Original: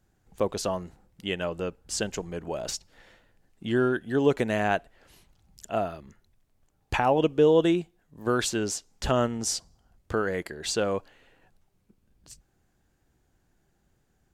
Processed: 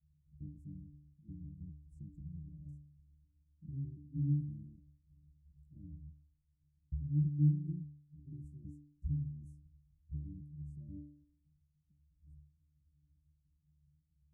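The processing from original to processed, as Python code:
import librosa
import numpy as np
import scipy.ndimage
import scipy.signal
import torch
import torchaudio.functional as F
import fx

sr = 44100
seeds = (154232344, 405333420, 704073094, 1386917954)

y = fx.pitch_trill(x, sr, semitones=1.5, every_ms=160)
y = scipy.signal.sosfilt(scipy.signal.cheby2(4, 70, [690.0, 3100.0], 'bandstop', fs=sr, output='sos'), y)
y = fx.octave_resonator(y, sr, note='D', decay_s=0.64)
y = y * 10.0 ** (13.0 / 20.0)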